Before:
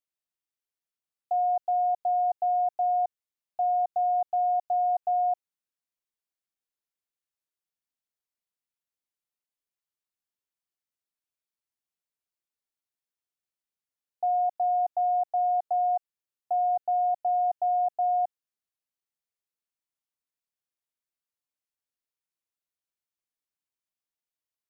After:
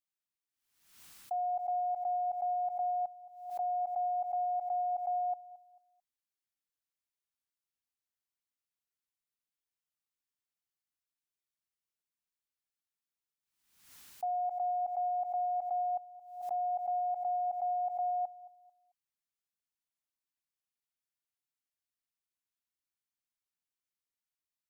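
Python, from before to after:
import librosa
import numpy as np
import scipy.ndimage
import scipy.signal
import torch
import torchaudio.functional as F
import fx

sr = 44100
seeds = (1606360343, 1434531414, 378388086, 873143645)

y = fx.peak_eq(x, sr, hz=530.0, db=-11.5, octaves=0.83)
y = fx.echo_feedback(y, sr, ms=221, feedback_pct=31, wet_db=-19)
y = fx.pre_swell(y, sr, db_per_s=75.0)
y = y * librosa.db_to_amplitude(-3.0)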